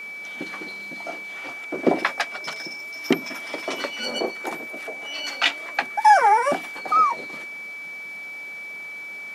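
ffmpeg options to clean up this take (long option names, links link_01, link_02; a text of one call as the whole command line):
ffmpeg -i in.wav -af "bandreject=frequency=2300:width=30" out.wav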